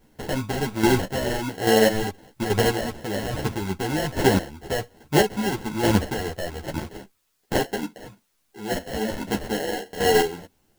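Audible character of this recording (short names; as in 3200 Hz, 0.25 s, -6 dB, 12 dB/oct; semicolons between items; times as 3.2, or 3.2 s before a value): aliases and images of a low sample rate 1200 Hz, jitter 0%; chopped level 1.2 Hz, depth 60%, duty 25%; a quantiser's noise floor 12-bit, dither triangular; a shimmering, thickened sound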